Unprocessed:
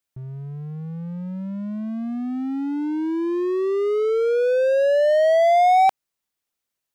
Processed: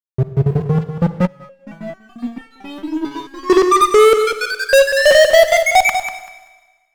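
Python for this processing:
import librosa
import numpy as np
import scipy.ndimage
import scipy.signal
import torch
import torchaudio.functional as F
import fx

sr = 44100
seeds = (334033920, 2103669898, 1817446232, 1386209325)

y = fx.spec_dropout(x, sr, seeds[0], share_pct=70)
y = scipy.signal.sosfilt(scipy.signal.butter(2, 40.0, 'highpass', fs=sr, output='sos'), y)
y = fx.low_shelf(y, sr, hz=75.0, db=4.5)
y = fx.hum_notches(y, sr, base_hz=50, count=4)
y = fx.small_body(y, sr, hz=(550.0, 1200.0), ring_ms=85, db=16)
y = fx.fuzz(y, sr, gain_db=31.0, gate_db=-40.0)
y = fx.echo_feedback(y, sr, ms=193, feedback_pct=20, wet_db=-9)
y = fx.rev_schroeder(y, sr, rt60_s=1.3, comb_ms=38, drr_db=11.0)
y = fx.resonator_held(y, sr, hz=4.5, low_hz=140.0, high_hz=450.0, at=(1.27, 3.5))
y = F.gain(torch.from_numpy(y), 6.0).numpy()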